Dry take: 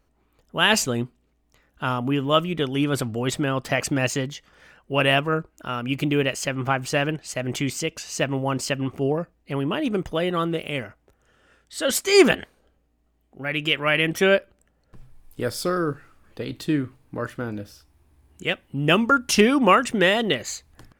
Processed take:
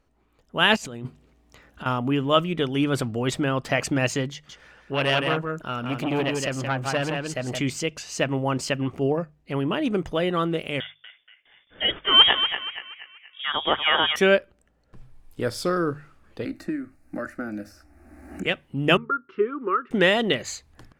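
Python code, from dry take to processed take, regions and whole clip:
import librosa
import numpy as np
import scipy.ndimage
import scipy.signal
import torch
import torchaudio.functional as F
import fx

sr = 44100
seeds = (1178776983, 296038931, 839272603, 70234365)

y = fx.chain(x, sr, fx.highpass(hz=46.0, slope=12),
    fx.over_compress(threshold_db=-35.0, ratio=-1.0), at=(0.76, 1.86))
y = fx.chain(y, sr, fx.echo_single(ms=170, db=-5.5),
    fx.transformer_sat(knee_hz=1300.0), at=(4.32, 7.6))
y = fx.chain(y, sr, fx.gate_hold(open_db=-50.0, close_db=-54.0, hold_ms=71.0, range_db=-21, attack_ms=1.4, release_ms=100.0),
    fx.echo_banded(ms=238, feedback_pct=57, hz=1000.0, wet_db=-5),
    fx.freq_invert(carrier_hz=3500), at=(10.8, 14.16))
y = fx.chain(y, sr, fx.fixed_phaser(hz=660.0, stages=8),
    fx.band_squash(depth_pct=100), at=(16.45, 18.46))
y = fx.chain(y, sr, fx.double_bandpass(hz=710.0, octaves=1.7),
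    fx.air_absorb(metres=370.0), at=(18.97, 19.91))
y = fx.high_shelf(y, sr, hz=11000.0, db=-11.5)
y = fx.hum_notches(y, sr, base_hz=50, count=3)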